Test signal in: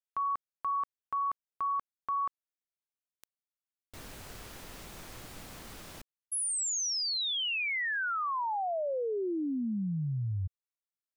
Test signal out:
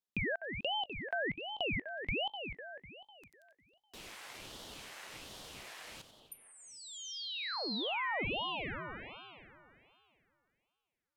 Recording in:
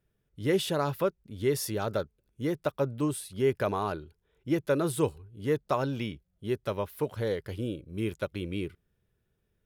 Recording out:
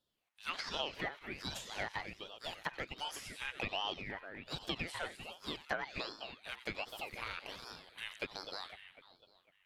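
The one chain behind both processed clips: high-pass 1.1 kHz 24 dB/octave; two-band feedback delay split 2.4 kHz, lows 250 ms, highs 91 ms, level -11 dB; low-pass that closes with the level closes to 2.5 kHz, closed at -30.5 dBFS; compression 2.5:1, threshold -41 dBFS; treble shelf 3.3 kHz -10 dB; ring modulator with a swept carrier 1.2 kHz, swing 65%, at 1.3 Hz; trim +9 dB

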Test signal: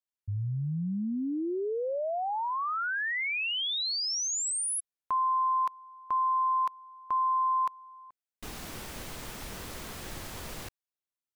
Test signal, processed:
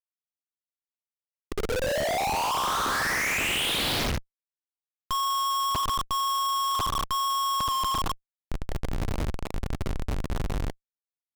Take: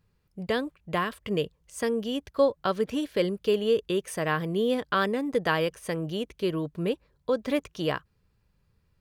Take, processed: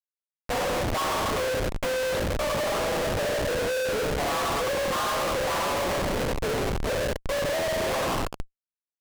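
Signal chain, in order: mistuned SSB +54 Hz 490–3600 Hz; dynamic bell 1 kHz, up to +7 dB, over -43 dBFS, Q 1.9; band-stop 1.5 kHz, Q 6.3; word length cut 12-bit, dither none; low-pass that closes with the level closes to 1.8 kHz, closed at -24 dBFS; on a send: tape echo 83 ms, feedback 53%, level -6 dB, low-pass 1.5 kHz; on the sum: Schroeder reverb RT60 1.4 s, combs from 29 ms, DRR -2 dB; compressor with a negative ratio -19 dBFS, ratio -0.5; doubling 14 ms -7 dB; Schmitt trigger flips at -30 dBFS; loudspeaker Doppler distortion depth 0.82 ms; trim -1 dB

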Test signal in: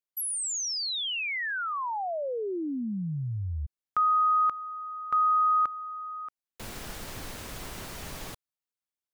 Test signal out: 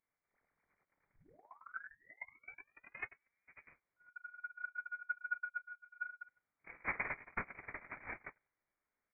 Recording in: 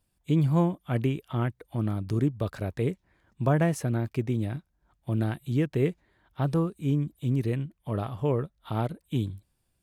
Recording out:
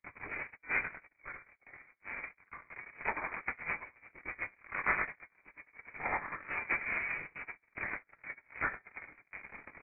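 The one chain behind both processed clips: one-bit comparator; simulated room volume 280 m³, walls furnished, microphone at 0.45 m; reverse; compression 10:1, threshold -28 dBFS; reverse; chorus voices 6, 1.2 Hz, delay 23 ms, depth 3 ms; on a send: delay 103 ms -4 dB; on the sum: gate -27 dBFS, range -55 dB; ladder high-pass 330 Hz, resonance 25%; frequency inversion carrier 2.7 kHz; trim +13.5 dB

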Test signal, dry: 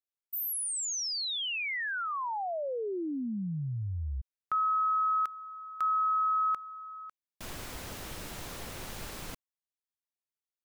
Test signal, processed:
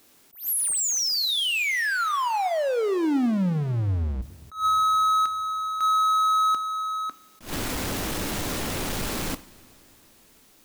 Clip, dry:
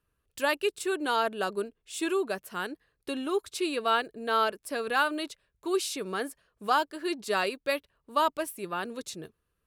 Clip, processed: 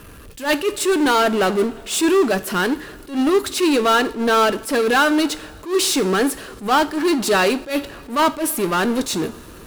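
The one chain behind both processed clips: peaking EQ 280 Hz +6.5 dB 0.98 oct; power-law waveshaper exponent 0.5; two-slope reverb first 0.43 s, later 4 s, from -18 dB, DRR 12 dB; attacks held to a fixed rise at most 180 dB/s; trim +4 dB

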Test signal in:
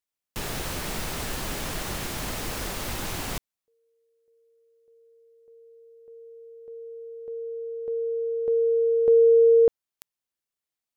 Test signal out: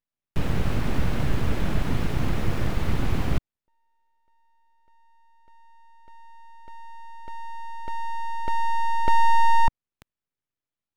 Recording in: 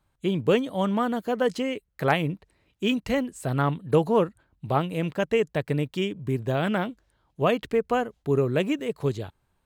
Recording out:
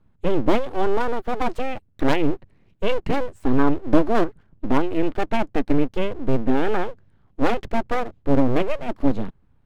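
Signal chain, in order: tone controls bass +14 dB, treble -15 dB; full-wave rectifier; trim +1 dB

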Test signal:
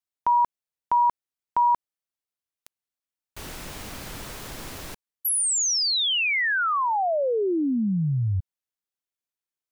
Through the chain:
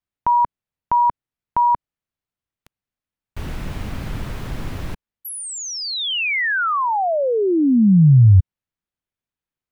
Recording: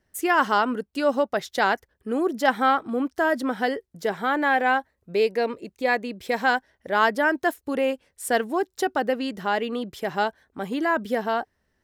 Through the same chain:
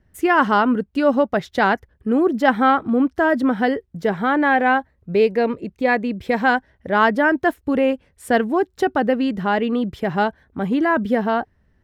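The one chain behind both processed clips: tone controls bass +11 dB, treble -11 dB; trim +4 dB

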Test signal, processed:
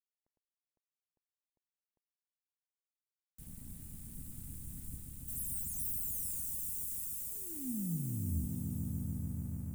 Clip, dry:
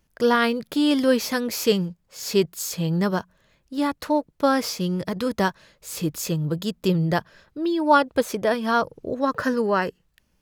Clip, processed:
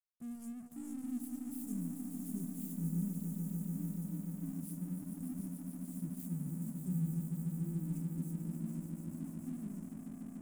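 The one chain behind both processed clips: self-modulated delay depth 0.27 ms; elliptic band-stop 230–8600 Hz, stop band 40 dB; feedback comb 84 Hz, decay 0.55 s, harmonics all, mix 60%; echo with a slow build-up 146 ms, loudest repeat 5, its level -7 dB; crossover distortion -49.5 dBFS; trim -8.5 dB

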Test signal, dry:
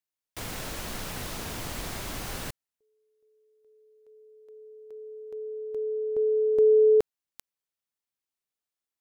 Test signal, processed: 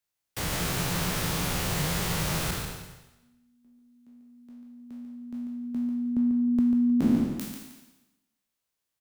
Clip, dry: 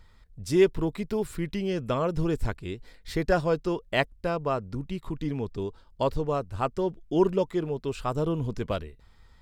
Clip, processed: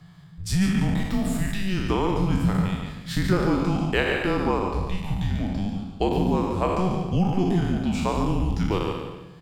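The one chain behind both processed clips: spectral sustain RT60 1.01 s; compression, threshold -22 dBFS; frequency shift -190 Hz; on a send: multi-tap echo 143/313 ms -7/-18 dB; on the sum: trim +3.5 dB

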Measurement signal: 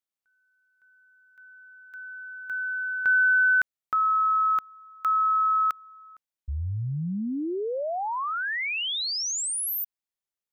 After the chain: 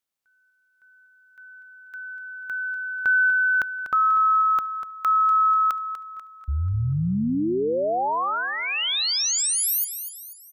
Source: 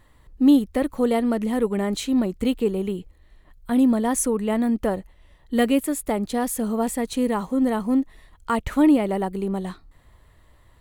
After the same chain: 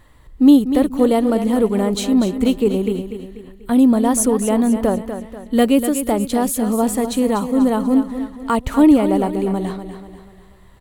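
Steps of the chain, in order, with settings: on a send: feedback delay 244 ms, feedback 43%, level -10 dB; on the sum: dynamic bell 1.9 kHz, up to -6 dB, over -43 dBFS, Q 1.9; trim +5.5 dB

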